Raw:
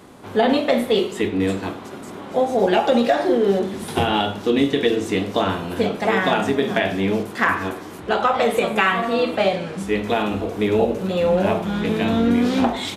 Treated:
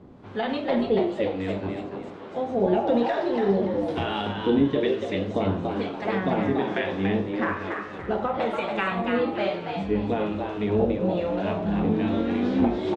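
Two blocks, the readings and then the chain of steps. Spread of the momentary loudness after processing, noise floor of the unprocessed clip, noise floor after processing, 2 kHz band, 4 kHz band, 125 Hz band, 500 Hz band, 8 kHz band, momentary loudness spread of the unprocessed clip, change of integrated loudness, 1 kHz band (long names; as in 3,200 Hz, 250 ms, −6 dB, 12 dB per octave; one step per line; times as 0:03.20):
7 LU, −36 dBFS, −38 dBFS, −8.5 dB, −10.5 dB, −2.5 dB, −5.5 dB, below −20 dB, 7 LU, −5.5 dB, −7.0 dB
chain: low-shelf EQ 250 Hz +9 dB
two-band tremolo in antiphase 1.1 Hz, depth 70%, crossover 840 Hz
high-frequency loss of the air 150 metres
echo with shifted repeats 286 ms, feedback 32%, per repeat +110 Hz, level −5 dB
level −5.5 dB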